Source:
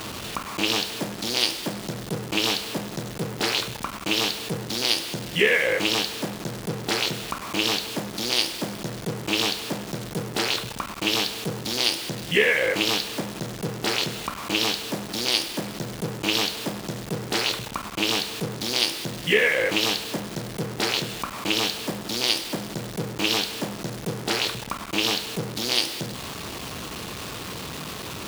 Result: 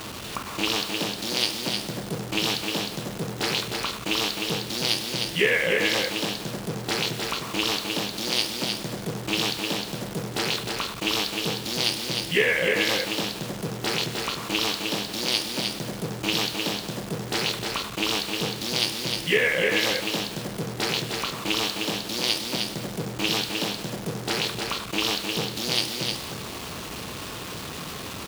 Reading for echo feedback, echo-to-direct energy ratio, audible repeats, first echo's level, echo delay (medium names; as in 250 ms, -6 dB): no regular repeats, -4.5 dB, 1, -4.5 dB, 308 ms